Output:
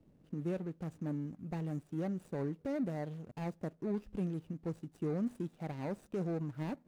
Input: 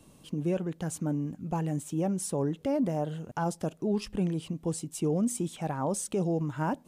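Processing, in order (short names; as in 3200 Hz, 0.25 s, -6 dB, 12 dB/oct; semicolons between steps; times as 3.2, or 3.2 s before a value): median filter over 41 samples; gain -7 dB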